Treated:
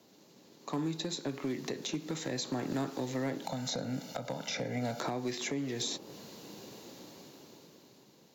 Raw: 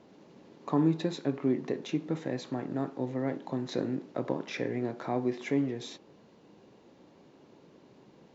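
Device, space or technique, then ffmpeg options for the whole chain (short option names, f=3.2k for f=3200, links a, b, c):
FM broadcast chain: -filter_complex "[0:a]equalizer=f=4.2k:t=o:w=0.5:g=4,asettb=1/sr,asplit=3[a][b][c];[a]atrim=end=3.444[d];[b]atrim=start=3.44:end=5,asetpts=PTS-STARTPTS,afade=t=in:d=0.004:c=qsin,afade=t=out:st=1.556:d=0.004:c=qsin,aecho=1:1:1.4:0.91,atrim=end_sample=68796[e];[c]atrim=start=4.996[f];[d][e]acrossfade=d=0.004:c1=hsin:c2=qsin[g];[g][f]acrossfade=d=0.004:c1=qsin:c2=hsin,highpass=f=70:w=0.5412,highpass=f=70:w=1.3066,dynaudnorm=f=310:g=9:m=15dB,acrossover=split=140|1200[h][i][j];[h]acompressor=threshold=-39dB:ratio=4[k];[i]acompressor=threshold=-26dB:ratio=4[l];[j]acompressor=threshold=-39dB:ratio=4[m];[k][l][m]amix=inputs=3:normalize=0,aemphasis=mode=production:type=50fm,alimiter=limit=-18dB:level=0:latency=1:release=394,asoftclip=type=hard:threshold=-21.5dB,lowpass=f=15k:w=0.5412,lowpass=f=15k:w=1.3066,aemphasis=mode=production:type=50fm,volume=-5.5dB"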